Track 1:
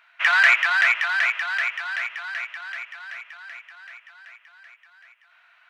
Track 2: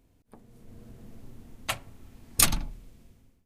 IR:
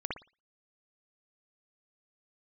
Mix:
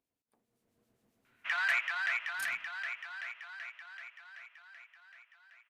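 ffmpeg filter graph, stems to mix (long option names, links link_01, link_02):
-filter_complex "[0:a]adelay=1250,volume=-14.5dB[link_01];[1:a]highpass=frequency=590:poles=1,acrossover=split=2200[link_02][link_03];[link_02]aeval=exprs='val(0)*(1-0.5/2+0.5/2*cos(2*PI*7.5*n/s))':channel_layout=same[link_04];[link_03]aeval=exprs='val(0)*(1-0.5/2-0.5/2*cos(2*PI*7.5*n/s))':channel_layout=same[link_05];[link_04][link_05]amix=inputs=2:normalize=0,volume=-14.5dB,afade=type=out:start_time=1.66:duration=0.27:silence=0.446684[link_06];[link_01][link_06]amix=inputs=2:normalize=0"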